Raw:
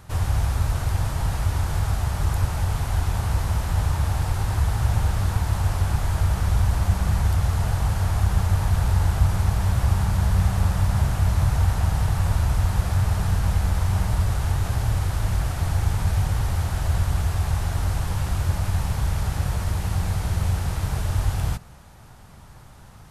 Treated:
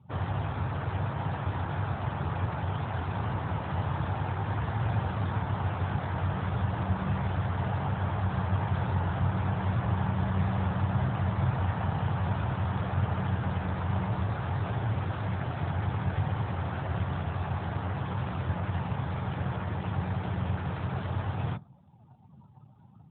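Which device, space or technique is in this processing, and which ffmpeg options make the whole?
mobile call with aggressive noise cancelling: -af "highpass=120,afftdn=nr=30:nf=-44" -ar 8000 -c:a libopencore_amrnb -b:a 12200

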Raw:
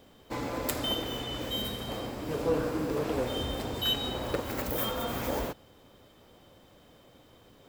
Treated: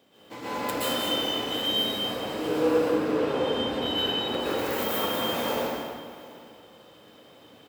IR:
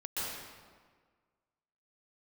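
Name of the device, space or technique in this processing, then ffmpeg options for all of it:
stadium PA: -filter_complex "[0:a]asettb=1/sr,asplit=3[s0][s1][s2];[s0]atrim=end=2.774[s3];[s1]atrim=start=2.77:end=4.28,asetpts=PTS-STARTPTS,afade=t=in:d=0.004:c=qsin,afade=t=out:st=1.506:d=0.004:c=qsin,aemphasis=mode=reproduction:type=50kf[s4];[s2]atrim=start=4.276[s5];[s3][s4]acrossfade=d=0.004:c1=hsin:c2=qsin[s6];[s6][s5]acrossfade=d=0.004:c1=qsin:c2=hsin,highpass=160,equalizer=f=2800:t=o:w=0.95:g=3.5,aecho=1:1:183.7|221.6:0.316|0.316[s7];[1:a]atrim=start_sample=2205[s8];[s7][s8]afir=irnorm=-1:irlink=0,highpass=52,aecho=1:1:734:0.0891"

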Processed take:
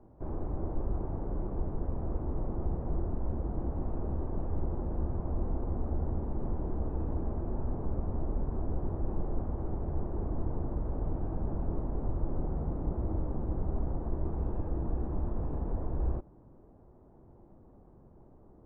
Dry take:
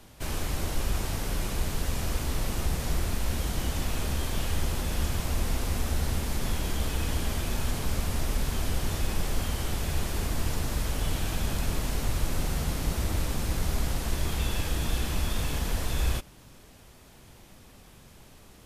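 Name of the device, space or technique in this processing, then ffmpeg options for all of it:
under water: -af "lowpass=f=940:w=0.5412,lowpass=f=940:w=1.3066,equalizer=f=340:t=o:w=0.53:g=6,volume=0.631"

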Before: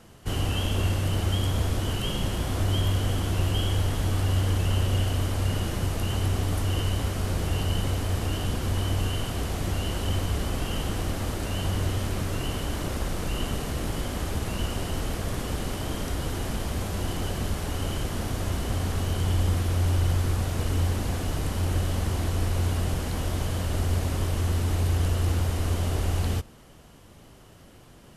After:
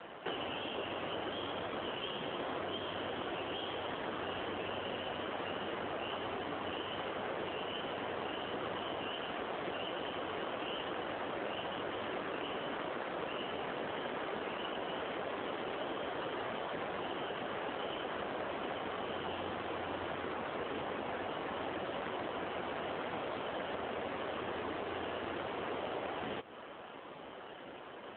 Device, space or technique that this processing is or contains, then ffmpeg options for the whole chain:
voicemail: -af "highpass=430,lowpass=2800,acompressor=threshold=0.00562:ratio=10,volume=3.76" -ar 8000 -c:a libopencore_amrnb -b:a 7400

